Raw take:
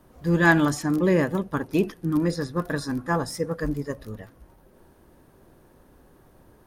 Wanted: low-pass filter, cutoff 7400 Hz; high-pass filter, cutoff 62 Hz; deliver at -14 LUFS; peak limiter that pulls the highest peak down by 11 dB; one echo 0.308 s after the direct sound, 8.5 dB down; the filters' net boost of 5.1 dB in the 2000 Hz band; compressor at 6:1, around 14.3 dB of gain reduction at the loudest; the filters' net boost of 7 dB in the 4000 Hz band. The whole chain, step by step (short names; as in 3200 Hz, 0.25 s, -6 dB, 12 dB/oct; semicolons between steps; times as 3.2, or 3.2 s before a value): HPF 62 Hz; LPF 7400 Hz; bell 2000 Hz +5 dB; bell 4000 Hz +8.5 dB; compressor 6:1, threshold -25 dBFS; limiter -26 dBFS; echo 0.308 s -8.5 dB; gain +20.5 dB